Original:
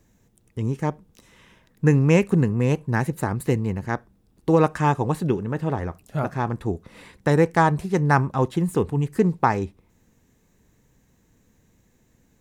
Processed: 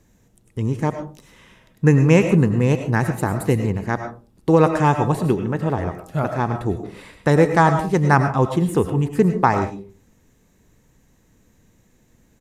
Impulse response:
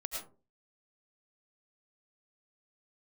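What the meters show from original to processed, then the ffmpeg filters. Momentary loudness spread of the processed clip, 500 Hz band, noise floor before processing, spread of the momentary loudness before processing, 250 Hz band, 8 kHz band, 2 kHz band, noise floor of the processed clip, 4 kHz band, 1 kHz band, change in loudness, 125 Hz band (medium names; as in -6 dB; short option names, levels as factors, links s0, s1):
12 LU, +3.5 dB, -63 dBFS, 11 LU, +3.5 dB, +3.5 dB, +3.5 dB, -59 dBFS, +3.5 dB, +3.5 dB, +3.5 dB, +3.5 dB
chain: -filter_complex "[0:a]asplit=2[s0][s1];[1:a]atrim=start_sample=2205[s2];[s1][s2]afir=irnorm=-1:irlink=0,volume=0.841[s3];[s0][s3]amix=inputs=2:normalize=0,aresample=32000,aresample=44100,volume=0.891"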